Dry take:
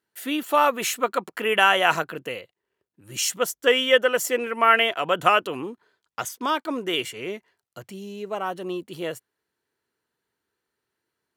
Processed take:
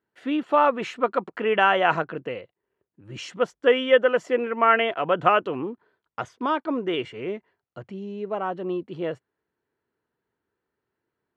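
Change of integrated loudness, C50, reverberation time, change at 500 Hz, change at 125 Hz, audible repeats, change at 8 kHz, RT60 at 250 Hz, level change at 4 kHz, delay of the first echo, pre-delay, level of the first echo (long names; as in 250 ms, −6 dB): −1.0 dB, no reverb audible, no reverb audible, +1.5 dB, +3.0 dB, no echo audible, below −20 dB, no reverb audible, −7.5 dB, no echo audible, no reverb audible, no echo audible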